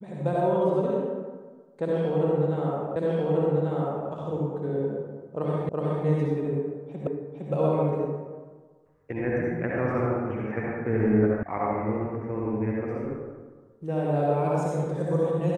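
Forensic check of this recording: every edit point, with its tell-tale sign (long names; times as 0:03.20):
0:02.96: the same again, the last 1.14 s
0:05.69: the same again, the last 0.37 s
0:07.07: the same again, the last 0.46 s
0:11.43: cut off before it has died away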